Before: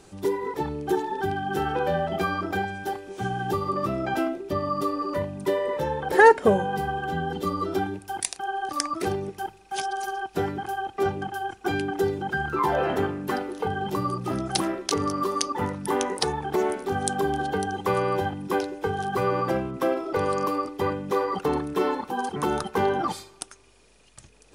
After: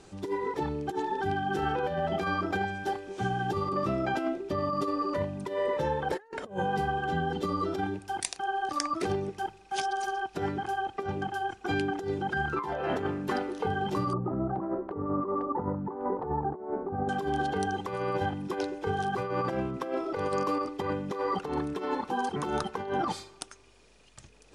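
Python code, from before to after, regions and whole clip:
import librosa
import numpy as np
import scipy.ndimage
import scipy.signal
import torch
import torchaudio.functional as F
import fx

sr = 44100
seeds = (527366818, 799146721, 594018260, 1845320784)

y = fx.chain(x, sr, fx.lowpass(hz=1100.0, slope=24),
    fx.over_compress(threshold_db=-29.0, ratio=-0.5), at=(14.13, 17.09))
y = scipy.signal.sosfilt(scipy.signal.butter(2, 7800.0, 'lowpass', fs=sr, output='sos'), y)
y = fx.over_compress(y, sr, threshold_db=-26.0, ratio=-0.5)
y = F.gain(torch.from_numpy(y), -3.0).numpy()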